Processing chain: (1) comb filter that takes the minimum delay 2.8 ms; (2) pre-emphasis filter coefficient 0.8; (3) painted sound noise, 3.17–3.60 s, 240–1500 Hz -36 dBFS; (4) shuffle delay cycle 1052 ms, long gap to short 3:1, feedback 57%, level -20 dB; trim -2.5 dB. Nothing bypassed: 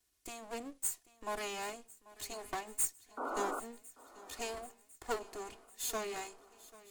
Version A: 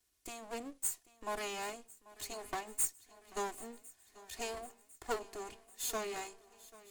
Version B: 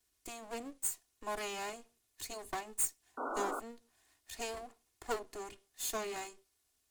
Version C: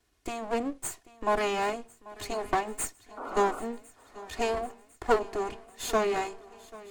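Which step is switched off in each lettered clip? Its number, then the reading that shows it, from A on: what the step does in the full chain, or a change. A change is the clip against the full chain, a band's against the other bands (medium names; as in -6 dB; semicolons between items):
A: 3, momentary loudness spread change +2 LU; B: 4, echo-to-direct -16.5 dB to none; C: 2, 8 kHz band -11.5 dB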